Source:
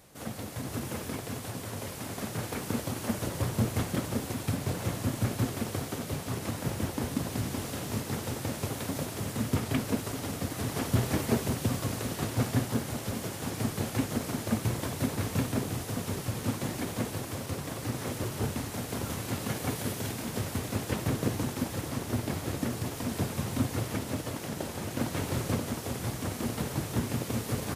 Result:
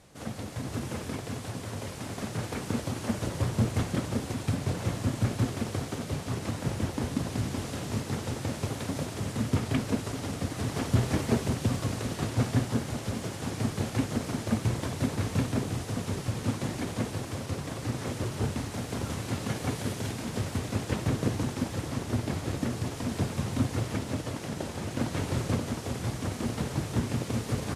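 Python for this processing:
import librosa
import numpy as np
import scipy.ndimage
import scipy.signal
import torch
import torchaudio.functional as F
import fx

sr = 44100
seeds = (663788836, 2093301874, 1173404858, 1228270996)

y = scipy.signal.sosfilt(scipy.signal.butter(2, 8900.0, 'lowpass', fs=sr, output='sos'), x)
y = fx.low_shelf(y, sr, hz=170.0, db=3.5)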